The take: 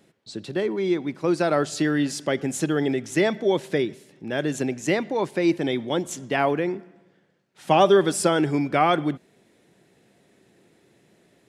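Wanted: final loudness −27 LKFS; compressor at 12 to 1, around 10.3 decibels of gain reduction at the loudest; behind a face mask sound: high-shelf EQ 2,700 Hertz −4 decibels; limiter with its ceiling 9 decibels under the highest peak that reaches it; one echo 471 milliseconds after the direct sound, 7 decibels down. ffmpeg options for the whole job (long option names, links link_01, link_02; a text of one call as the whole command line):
ffmpeg -i in.wav -af "acompressor=threshold=-22dB:ratio=12,alimiter=limit=-20.5dB:level=0:latency=1,highshelf=frequency=2700:gain=-4,aecho=1:1:471:0.447,volume=4dB" out.wav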